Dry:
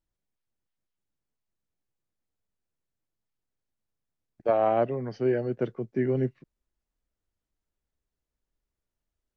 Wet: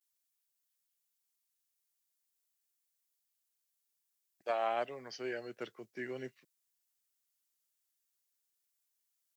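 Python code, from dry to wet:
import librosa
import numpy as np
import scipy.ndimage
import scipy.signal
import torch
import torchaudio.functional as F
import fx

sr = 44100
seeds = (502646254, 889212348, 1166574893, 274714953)

y = fx.vibrato(x, sr, rate_hz=0.48, depth_cents=53.0)
y = np.diff(y, prepend=0.0)
y = y * librosa.db_to_amplitude(10.0)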